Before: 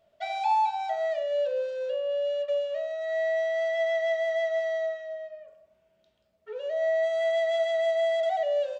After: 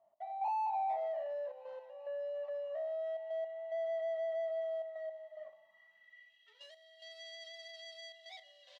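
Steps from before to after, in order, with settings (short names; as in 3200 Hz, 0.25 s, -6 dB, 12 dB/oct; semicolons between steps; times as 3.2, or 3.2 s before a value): high shelf 2000 Hz -9 dB; comb 1 ms, depth 76%; sample leveller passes 2; compressor 2:1, threshold -41 dBFS, peak gain reduction 12.5 dB; step gate "x..xxxxxxxx." 109 bpm -12 dB; on a send: thin delay 0.387 s, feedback 79%, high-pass 2200 Hz, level -15 dB; on the sum: soft clip -36.5 dBFS, distortion -12 dB; band-pass sweep 780 Hz -> 4100 Hz, 5.56–6.6; gain +5 dB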